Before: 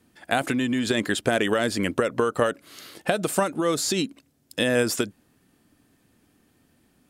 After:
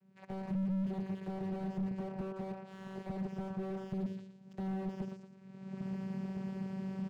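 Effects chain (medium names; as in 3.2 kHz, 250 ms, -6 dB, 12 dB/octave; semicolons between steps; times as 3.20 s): recorder AGC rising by 35 dB/s; treble shelf 2.5 kHz -7.5 dB; on a send: delay 71 ms -15 dB; on the sum: compression 2.5:1, threshold -28 dBFS, peak gain reduction 9.5 dB; feedback delay 116 ms, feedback 37%, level -10 dB; vocoder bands 8, saw 191 Hz; peaking EQ 300 Hz -13.5 dB 0.48 oct; slew-rate limiter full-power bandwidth 7.1 Hz; trim -3.5 dB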